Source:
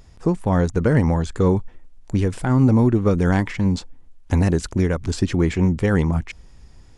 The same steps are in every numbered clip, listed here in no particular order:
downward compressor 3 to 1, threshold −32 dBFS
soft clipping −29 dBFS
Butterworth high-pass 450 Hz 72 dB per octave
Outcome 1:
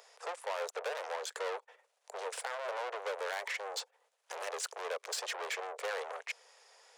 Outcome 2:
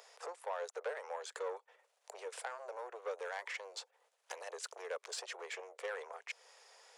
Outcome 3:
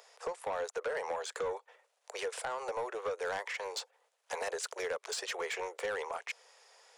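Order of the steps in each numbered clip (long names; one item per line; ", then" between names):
soft clipping, then Butterworth high-pass, then downward compressor
downward compressor, then soft clipping, then Butterworth high-pass
Butterworth high-pass, then downward compressor, then soft clipping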